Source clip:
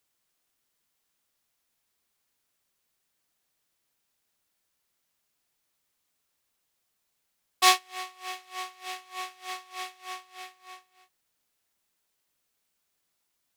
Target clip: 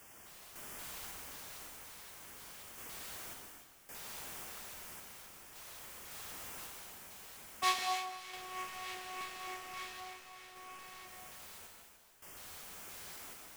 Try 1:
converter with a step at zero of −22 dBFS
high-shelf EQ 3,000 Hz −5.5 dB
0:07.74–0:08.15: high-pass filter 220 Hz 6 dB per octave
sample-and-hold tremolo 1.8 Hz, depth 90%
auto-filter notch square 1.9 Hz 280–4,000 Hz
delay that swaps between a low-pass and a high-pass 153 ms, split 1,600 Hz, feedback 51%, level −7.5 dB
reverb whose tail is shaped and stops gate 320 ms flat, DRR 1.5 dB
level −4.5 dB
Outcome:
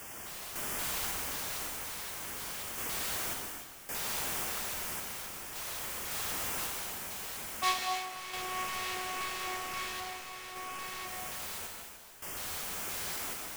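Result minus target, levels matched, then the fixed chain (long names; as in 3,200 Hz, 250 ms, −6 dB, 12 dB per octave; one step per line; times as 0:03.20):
converter with a step at zero: distortion +9 dB
converter with a step at zero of −33.5 dBFS
high-shelf EQ 3,000 Hz −5.5 dB
0:07.74–0:08.15: high-pass filter 220 Hz 6 dB per octave
sample-and-hold tremolo 1.8 Hz, depth 90%
auto-filter notch square 1.9 Hz 280–4,000 Hz
delay that swaps between a low-pass and a high-pass 153 ms, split 1,600 Hz, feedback 51%, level −7.5 dB
reverb whose tail is shaped and stops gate 320 ms flat, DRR 1.5 dB
level −4.5 dB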